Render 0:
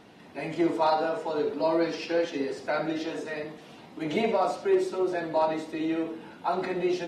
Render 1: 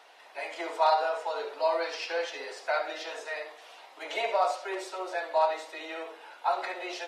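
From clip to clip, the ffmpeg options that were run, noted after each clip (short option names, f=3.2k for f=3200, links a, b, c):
-af "highpass=f=600:w=0.5412,highpass=f=600:w=1.3066,volume=1.5dB"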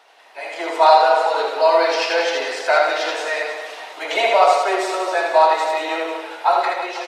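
-filter_complex "[0:a]dynaudnorm=f=170:g=7:m=9.5dB,asplit=2[a][b];[b]aecho=0:1:80|184|319.2|495|723.4:0.631|0.398|0.251|0.158|0.1[c];[a][c]amix=inputs=2:normalize=0,volume=2.5dB"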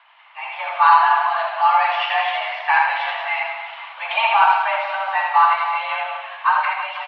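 -af "crystalizer=i=3:c=0,highpass=f=380:t=q:w=0.5412,highpass=f=380:t=q:w=1.307,lowpass=f=2.8k:t=q:w=0.5176,lowpass=f=2.8k:t=q:w=0.7071,lowpass=f=2.8k:t=q:w=1.932,afreqshift=220,volume=-1.5dB"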